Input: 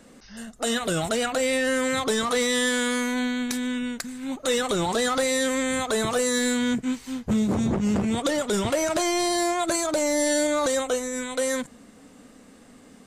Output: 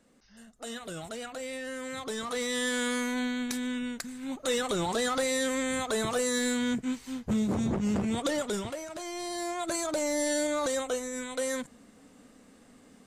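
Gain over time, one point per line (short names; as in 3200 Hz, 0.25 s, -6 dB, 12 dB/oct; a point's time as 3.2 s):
1.78 s -14 dB
2.85 s -5 dB
8.45 s -5 dB
8.86 s -16.5 dB
9.82 s -6 dB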